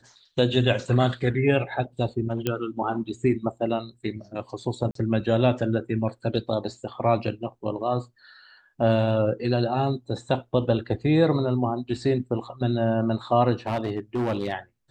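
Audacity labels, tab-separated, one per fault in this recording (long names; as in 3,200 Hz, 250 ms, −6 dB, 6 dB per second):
2.470000	2.470000	click −11 dBFS
4.910000	4.950000	drop-out 43 ms
13.660000	14.530000	clipping −21.5 dBFS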